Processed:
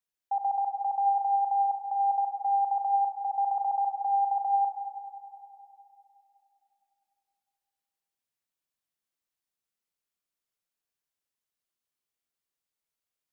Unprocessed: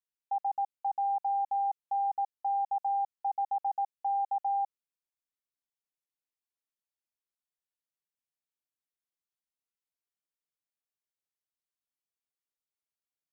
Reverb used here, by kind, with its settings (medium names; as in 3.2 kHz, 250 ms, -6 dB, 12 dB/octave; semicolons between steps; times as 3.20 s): Schroeder reverb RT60 3 s, combs from 33 ms, DRR 3 dB; trim +2.5 dB